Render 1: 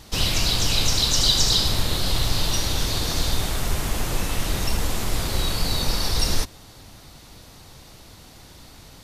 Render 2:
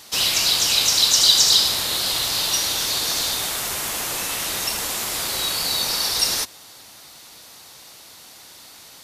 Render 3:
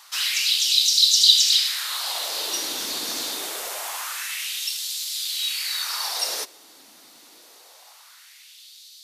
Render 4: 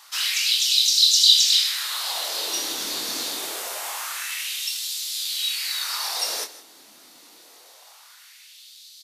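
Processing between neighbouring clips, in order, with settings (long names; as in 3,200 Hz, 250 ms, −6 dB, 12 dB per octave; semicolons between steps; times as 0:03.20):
high-pass filter 850 Hz 6 dB per octave; high-shelf EQ 6,200 Hz +5.5 dB; level +3.5 dB
auto-filter high-pass sine 0.25 Hz 250–4,000 Hz; on a send at −20.5 dB: convolution reverb RT60 0.65 s, pre-delay 4 ms; on the sum: level −6 dB
double-tracking delay 24 ms −6 dB; single-tap delay 159 ms −16.5 dB; level −1 dB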